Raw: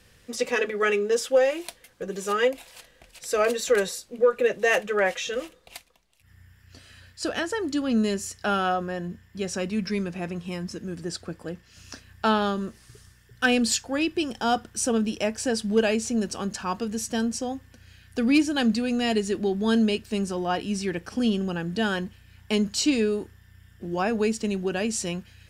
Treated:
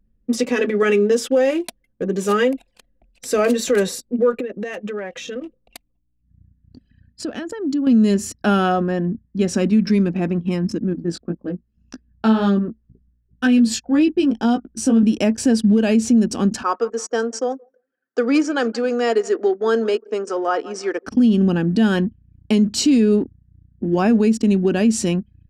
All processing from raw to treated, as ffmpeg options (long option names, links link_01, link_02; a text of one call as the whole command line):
ffmpeg -i in.wav -filter_complex "[0:a]asettb=1/sr,asplit=3[link_01][link_02][link_03];[link_01]atrim=end=4.404[link_04];[link_02]atrim=start=4.4:end=7.87,asetpts=PTS-STARTPTS,afade=type=in:duration=0.004:curve=qsin,afade=type=out:start_time=3.466:duration=0.004:curve=qsin,acompressor=threshold=-35dB:ratio=4:attack=3.2:release=140:knee=1:detection=peak,aeval=exprs='val(0)+0.000447*(sin(2*PI*60*n/s)+sin(2*PI*2*60*n/s)/2+sin(2*PI*3*60*n/s)/3+sin(2*PI*4*60*n/s)/4+sin(2*PI*5*60*n/s)/5)':channel_layout=same[link_05];[link_03]atrim=start=7.866[link_06];[link_04][link_05]acrossfade=duration=0.004:curve1=hsin:curve2=qsin[link_07];[link_07][link_06]acrossfade=duration=0.004:curve1=qsin:curve2=hsin,asettb=1/sr,asplit=3[link_08][link_09][link_10];[link_08]atrim=end=10.934[link_11];[link_09]atrim=start=10.93:end=15.03,asetpts=PTS-STARTPTS,afade=type=in:duration=0.004:curve=qsin,afade=type=out:start_time=4.096:duration=0.004:curve=qsin,highshelf=frequency=6100:gain=-4,flanger=delay=15.5:depth=3.3:speed=1.9[link_12];[link_10]atrim=start=15.026[link_13];[link_11][link_12]acrossfade=duration=0.004:curve1=hsin:curve2=qsin[link_14];[link_14][link_13]acrossfade=duration=0.004:curve1=qsin:curve2=hsin,asettb=1/sr,asplit=3[link_15][link_16][link_17];[link_15]atrim=end=16.634[link_18];[link_16]atrim=start=16.63:end=21.07,asetpts=PTS-STARTPTS,afade=type=in:duration=0.004:curve=qsin,afade=type=out:start_time=4.436:duration=0.004:curve=qsin,highpass=frequency=420:width=0.5412,highpass=frequency=420:width=1.3066,equalizer=frequency=470:width_type=q:width=4:gain=6,equalizer=frequency=1300:width_type=q:width=4:gain=10,equalizer=frequency=2700:width_type=q:width=4:gain=-8,equalizer=frequency=3900:width_type=q:width=4:gain=-9,lowpass=frequency=7500:width=0.5412,lowpass=frequency=7500:width=1.3066,aecho=1:1:168|336|504:0.0891|0.0374|0.0157,atrim=end_sample=195804[link_19];[link_17]atrim=start=21.066[link_20];[link_18][link_19]acrossfade=duration=0.004:curve1=hsin:curve2=qsin[link_21];[link_21][link_20]acrossfade=duration=0.004:curve1=qsin:curve2=hsin,anlmdn=0.398,equalizer=frequency=250:width=1.4:gain=14.5,alimiter=limit=-13dB:level=0:latency=1:release=99,volume=4.5dB" out.wav